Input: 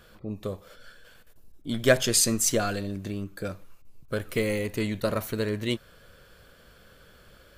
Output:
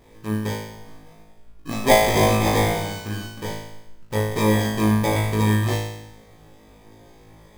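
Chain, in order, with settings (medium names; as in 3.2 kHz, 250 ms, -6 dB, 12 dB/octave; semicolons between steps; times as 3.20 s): sample-rate reducer 1.4 kHz, jitter 0%; on a send: flutter echo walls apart 3.2 m, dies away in 0.89 s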